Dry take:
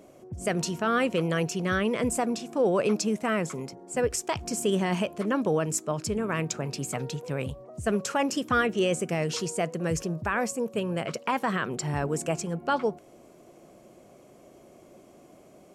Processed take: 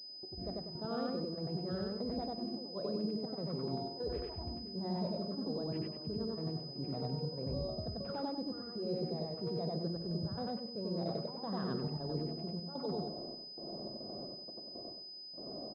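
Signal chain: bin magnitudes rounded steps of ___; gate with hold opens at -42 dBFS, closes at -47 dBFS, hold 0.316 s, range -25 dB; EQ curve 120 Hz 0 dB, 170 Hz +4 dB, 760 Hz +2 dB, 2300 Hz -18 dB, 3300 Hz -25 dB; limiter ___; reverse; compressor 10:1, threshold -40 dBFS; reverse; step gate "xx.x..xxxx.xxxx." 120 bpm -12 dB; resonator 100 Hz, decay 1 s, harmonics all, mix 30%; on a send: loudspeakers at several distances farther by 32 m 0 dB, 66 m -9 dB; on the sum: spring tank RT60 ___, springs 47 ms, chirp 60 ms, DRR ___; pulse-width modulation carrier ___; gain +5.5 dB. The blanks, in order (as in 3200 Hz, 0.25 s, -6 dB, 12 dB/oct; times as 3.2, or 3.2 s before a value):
15 dB, -24 dBFS, 1 s, 14 dB, 5000 Hz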